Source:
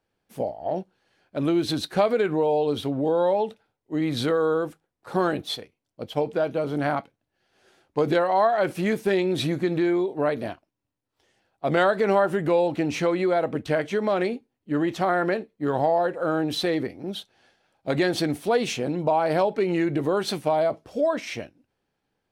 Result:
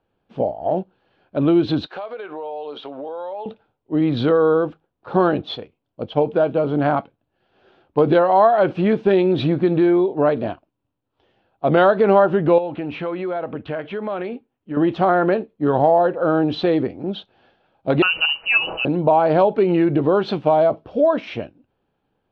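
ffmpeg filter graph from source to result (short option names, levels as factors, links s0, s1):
-filter_complex "[0:a]asettb=1/sr,asplit=3[s0][s1][s2];[s0]atrim=end=1.864[s3];[s1]atrim=start=1.86:end=3.46,asetpts=PTS-STARTPTS,afade=t=in:d=0.004:c=qsin,afade=t=out:st=1.596:d=0.004:c=qsin,highpass=640,acompressor=threshold=0.02:ratio=5:attack=3.2:release=140:knee=1:detection=peak[s4];[s2]atrim=start=3.456[s5];[s3][s4]acrossfade=d=0.004:c1=hsin:c2=qsin[s6];[s6][s5]acrossfade=d=0.004:c1=qsin:c2=hsin,asettb=1/sr,asplit=3[s7][s8][s9];[s7]atrim=end=12.584[s10];[s8]atrim=start=12.58:end=14.77,asetpts=PTS-STARTPTS,afade=t=in:d=0.004:c=qsin,afade=t=out:st=2.186:d=0.004:c=qsin,lowpass=2500,tiltshelf=f=1300:g=-5.5,acompressor=threshold=0.0251:ratio=2:attack=3.2:release=140:knee=1:detection=peak[s11];[s9]atrim=start=14.766[s12];[s10][s11]acrossfade=d=0.004:c1=hsin:c2=qsin[s13];[s13][s12]acrossfade=d=0.004:c1=qsin:c2=hsin,asettb=1/sr,asplit=3[s14][s15][s16];[s14]atrim=end=18.024[s17];[s15]atrim=start=18.02:end=18.85,asetpts=PTS-STARTPTS,afade=t=in:d=0.004:c=qsin,afade=t=out:st=0.826:d=0.004:c=qsin,aecho=1:1:6.1:0.39,atrim=end_sample=36603,lowpass=f=2600:t=q:w=0.5098,lowpass=f=2600:t=q:w=0.6013,lowpass=f=2600:t=q:w=0.9,lowpass=f=2600:t=q:w=2.563,afreqshift=-3100[s18];[s16]atrim=start=18.846[s19];[s17][s18]acrossfade=d=0.004:c1=hsin:c2=qsin[s20];[s20][s19]acrossfade=d=0.004:c1=qsin:c2=hsin,lowpass=f=3200:w=0.5412,lowpass=f=3200:w=1.3066,equalizer=f=2000:t=o:w=0.6:g=-10,volume=2.24"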